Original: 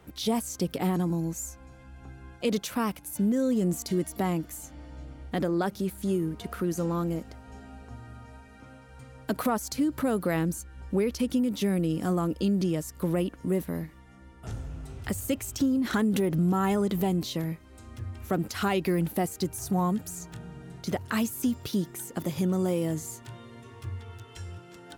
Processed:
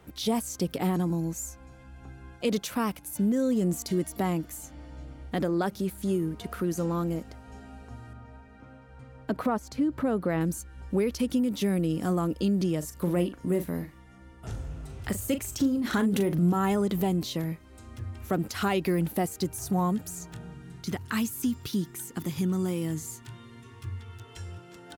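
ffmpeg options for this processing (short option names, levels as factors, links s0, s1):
-filter_complex "[0:a]asettb=1/sr,asplit=3[s0][s1][s2];[s0]atrim=end=8.134[s3];[s1]atrim=start=8.13:end=10.41,asetpts=PTS-STARTPTS,afade=t=in:d=0.004:c=qsin,afade=t=out:st=2.276:d=0.004:c=qsin,lowpass=f=1800:p=1[s4];[s2]atrim=start=10.406[s5];[s3][s4]acrossfade=d=0.004:c1=hsin:c2=qsin[s6];[s6][s5]acrossfade=d=0.004:c1=qsin:c2=hsin,asplit=3[s7][s8][s9];[s7]afade=t=out:st=12.81:d=0.02[s10];[s8]asplit=2[s11][s12];[s12]adelay=40,volume=0.299[s13];[s11][s13]amix=inputs=2:normalize=0,afade=t=in:st=12.81:d=0.02,afade=t=out:st=16.55:d=0.02[s14];[s9]afade=t=in:st=16.55:d=0.02[s15];[s10][s14][s15]amix=inputs=3:normalize=0,asettb=1/sr,asplit=3[s16][s17][s18];[s16]atrim=end=20.544[s19];[s17]atrim=start=20.54:end=24.2,asetpts=PTS-STARTPTS,afade=t=in:d=0.004:c=qsin,afade=t=out:st=3.656:d=0.004:c=qsin,equalizer=f=590:t=o:w=0.73:g=-12[s20];[s18]atrim=start=24.196[s21];[s19][s20]acrossfade=d=0.004:c1=hsin:c2=qsin[s22];[s22][s21]acrossfade=d=0.004:c1=qsin:c2=hsin"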